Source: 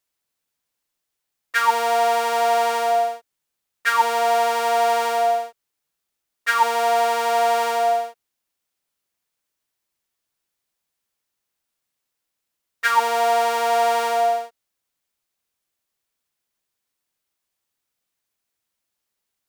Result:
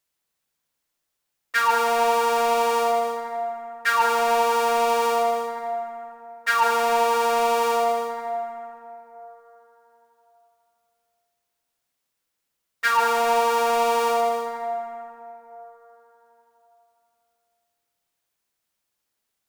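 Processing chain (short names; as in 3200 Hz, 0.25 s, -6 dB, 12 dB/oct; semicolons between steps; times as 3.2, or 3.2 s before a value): soft clip -13.5 dBFS, distortion -18 dB; plate-style reverb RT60 3.6 s, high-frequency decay 0.4×, DRR 3.5 dB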